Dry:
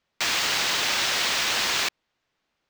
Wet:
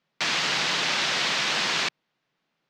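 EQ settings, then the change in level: low-pass 5.6 kHz 12 dB/octave; resonant low shelf 110 Hz -10 dB, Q 3; 0.0 dB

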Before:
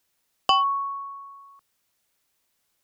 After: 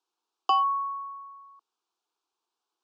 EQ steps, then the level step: rippled Chebyshev high-pass 230 Hz, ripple 3 dB; distance through air 130 m; static phaser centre 390 Hz, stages 8; 0.0 dB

